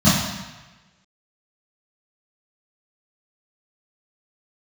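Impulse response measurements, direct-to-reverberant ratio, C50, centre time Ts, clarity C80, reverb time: −13.5 dB, 0.5 dB, 75 ms, 4.0 dB, 1.2 s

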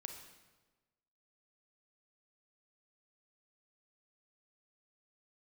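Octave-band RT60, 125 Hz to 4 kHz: 1.3, 1.3, 1.3, 1.2, 1.1, 1.0 seconds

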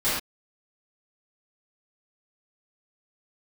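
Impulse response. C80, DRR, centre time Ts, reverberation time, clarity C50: 3.5 dB, −15.0 dB, 61 ms, non-exponential decay, −1.0 dB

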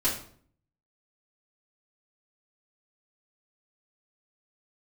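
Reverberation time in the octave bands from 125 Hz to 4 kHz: 0.80, 0.70, 0.60, 0.50, 0.45, 0.40 seconds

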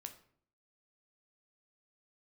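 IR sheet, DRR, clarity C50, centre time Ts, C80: 6.0 dB, 12.0 dB, 9 ms, 15.5 dB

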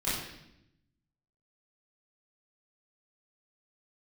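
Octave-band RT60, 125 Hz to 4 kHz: 1.4, 1.2, 0.90, 0.75, 0.80, 0.80 seconds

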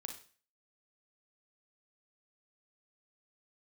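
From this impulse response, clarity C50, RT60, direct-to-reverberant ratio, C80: 7.5 dB, 0.40 s, 3.5 dB, 13.0 dB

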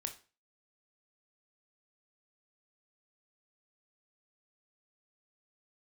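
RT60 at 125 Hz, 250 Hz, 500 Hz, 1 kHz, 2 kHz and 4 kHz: 0.40, 0.40, 0.35, 0.35, 0.35, 0.35 seconds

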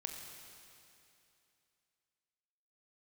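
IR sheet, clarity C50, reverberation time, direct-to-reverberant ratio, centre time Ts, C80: 3.5 dB, 2.7 s, 2.0 dB, 81 ms, 4.5 dB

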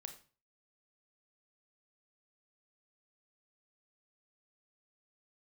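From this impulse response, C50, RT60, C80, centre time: 10.5 dB, 0.40 s, 14.5 dB, 13 ms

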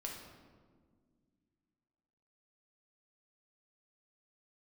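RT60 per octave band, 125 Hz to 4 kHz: 2.8, 2.9, 2.1, 1.5, 1.1, 0.90 seconds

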